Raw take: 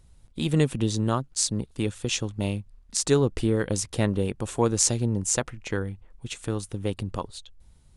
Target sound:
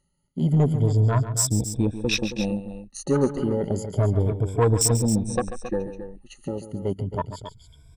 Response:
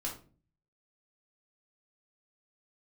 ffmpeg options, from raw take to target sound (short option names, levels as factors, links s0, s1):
-af "afftfilt=real='re*pow(10,23/40*sin(2*PI*(1.7*log(max(b,1)*sr/1024/100)/log(2)-(0.31)*(pts-256)/sr)))':imag='im*pow(10,23/40*sin(2*PI*(1.7*log(max(b,1)*sr/1024/100)/log(2)-(0.31)*(pts-256)/sr)))':win_size=1024:overlap=0.75,afwtdn=0.0631,areverse,acompressor=mode=upward:threshold=0.0141:ratio=2.5,areverse,asoftclip=type=tanh:threshold=0.251,aecho=1:1:139.9|271.1:0.251|0.282"